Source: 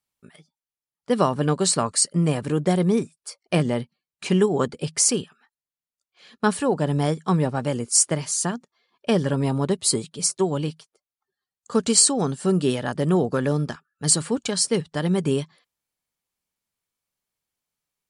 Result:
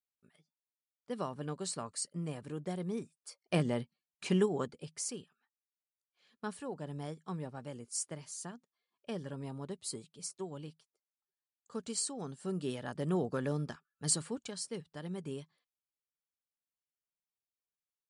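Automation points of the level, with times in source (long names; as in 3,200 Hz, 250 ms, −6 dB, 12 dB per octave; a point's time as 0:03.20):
0:02.86 −18 dB
0:03.55 −9.5 dB
0:04.41 −9.5 dB
0:04.92 −19.5 dB
0:12.07 −19.5 dB
0:13.17 −12 dB
0:14.13 −12 dB
0:14.61 −19 dB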